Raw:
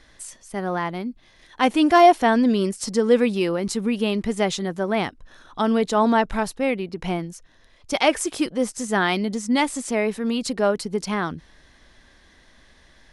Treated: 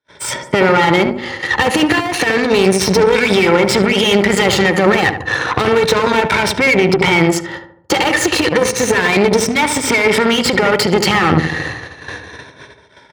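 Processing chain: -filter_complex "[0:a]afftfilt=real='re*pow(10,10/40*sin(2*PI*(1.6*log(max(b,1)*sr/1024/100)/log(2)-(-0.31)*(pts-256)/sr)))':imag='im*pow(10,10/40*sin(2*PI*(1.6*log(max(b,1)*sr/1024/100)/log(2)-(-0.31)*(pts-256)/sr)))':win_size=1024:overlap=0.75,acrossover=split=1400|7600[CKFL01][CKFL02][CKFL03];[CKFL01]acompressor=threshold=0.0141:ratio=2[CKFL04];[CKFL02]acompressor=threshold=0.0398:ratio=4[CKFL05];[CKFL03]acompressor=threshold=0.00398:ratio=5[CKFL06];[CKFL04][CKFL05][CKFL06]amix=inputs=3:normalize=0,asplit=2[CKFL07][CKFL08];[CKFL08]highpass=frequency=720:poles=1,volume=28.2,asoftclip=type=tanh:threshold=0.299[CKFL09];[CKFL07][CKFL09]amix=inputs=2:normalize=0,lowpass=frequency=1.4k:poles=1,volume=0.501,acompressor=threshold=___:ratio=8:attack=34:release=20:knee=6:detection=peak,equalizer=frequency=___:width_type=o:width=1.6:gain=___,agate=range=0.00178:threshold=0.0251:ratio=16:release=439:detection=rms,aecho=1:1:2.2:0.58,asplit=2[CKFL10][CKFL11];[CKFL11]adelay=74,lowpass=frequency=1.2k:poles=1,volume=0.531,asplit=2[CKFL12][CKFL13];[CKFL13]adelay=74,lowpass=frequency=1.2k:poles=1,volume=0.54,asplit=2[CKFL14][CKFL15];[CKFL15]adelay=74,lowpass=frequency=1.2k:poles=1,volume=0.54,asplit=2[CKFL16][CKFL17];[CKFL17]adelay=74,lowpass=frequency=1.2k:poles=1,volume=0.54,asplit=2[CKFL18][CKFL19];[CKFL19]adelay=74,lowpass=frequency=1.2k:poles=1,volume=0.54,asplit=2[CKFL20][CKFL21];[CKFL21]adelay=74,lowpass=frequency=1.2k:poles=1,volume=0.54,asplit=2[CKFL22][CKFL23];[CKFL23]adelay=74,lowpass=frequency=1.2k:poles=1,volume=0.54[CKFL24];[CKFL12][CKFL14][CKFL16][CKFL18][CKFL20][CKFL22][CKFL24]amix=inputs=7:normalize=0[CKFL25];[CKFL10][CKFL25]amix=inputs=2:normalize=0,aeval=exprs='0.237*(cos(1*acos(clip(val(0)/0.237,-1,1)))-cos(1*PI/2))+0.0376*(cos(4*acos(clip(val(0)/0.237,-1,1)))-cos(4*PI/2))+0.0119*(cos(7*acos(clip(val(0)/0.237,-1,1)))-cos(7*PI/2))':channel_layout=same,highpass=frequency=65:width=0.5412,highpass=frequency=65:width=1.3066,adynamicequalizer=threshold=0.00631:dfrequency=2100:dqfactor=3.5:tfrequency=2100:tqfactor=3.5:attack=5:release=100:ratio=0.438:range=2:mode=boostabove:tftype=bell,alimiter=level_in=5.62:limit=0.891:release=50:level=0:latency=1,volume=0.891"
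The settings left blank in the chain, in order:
0.0251, 120, 11.5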